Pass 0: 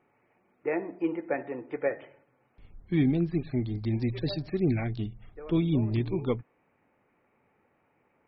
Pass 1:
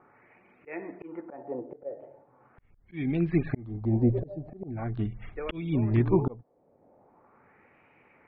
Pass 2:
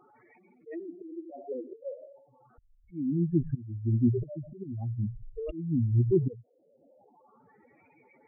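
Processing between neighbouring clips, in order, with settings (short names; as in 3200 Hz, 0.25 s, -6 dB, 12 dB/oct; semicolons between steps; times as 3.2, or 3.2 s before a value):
auto swell 0.626 s; LFO low-pass sine 0.41 Hz 580–2600 Hz; gain +7 dB
spectral contrast raised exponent 3.7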